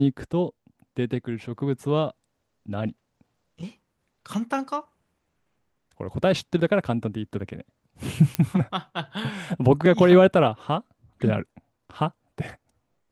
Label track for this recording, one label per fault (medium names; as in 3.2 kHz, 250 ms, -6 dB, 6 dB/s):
8.350000	8.350000	pop -9 dBFS